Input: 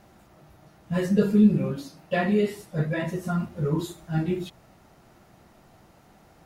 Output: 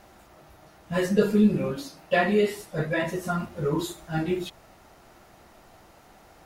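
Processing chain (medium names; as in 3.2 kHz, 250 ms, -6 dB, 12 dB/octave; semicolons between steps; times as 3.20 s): peaking EQ 150 Hz -9 dB 1.8 oct; trim +4.5 dB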